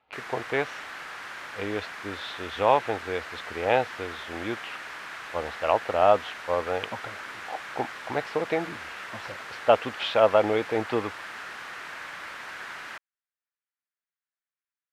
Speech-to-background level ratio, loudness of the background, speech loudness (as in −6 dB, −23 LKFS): 10.5 dB, −38.0 LKFS, −27.5 LKFS